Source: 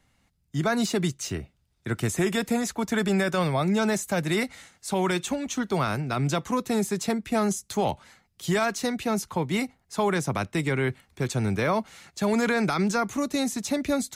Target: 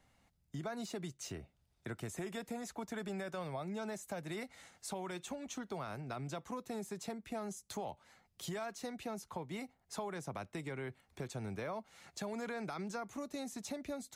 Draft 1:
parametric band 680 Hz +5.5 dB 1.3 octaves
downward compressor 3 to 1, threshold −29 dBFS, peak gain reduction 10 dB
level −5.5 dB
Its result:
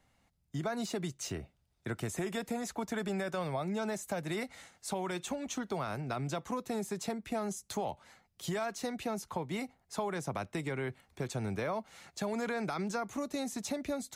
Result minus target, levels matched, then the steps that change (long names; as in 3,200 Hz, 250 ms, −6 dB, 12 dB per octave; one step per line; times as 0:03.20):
downward compressor: peak gain reduction −6.5 dB
change: downward compressor 3 to 1, threshold −38.5 dBFS, peak gain reduction 16 dB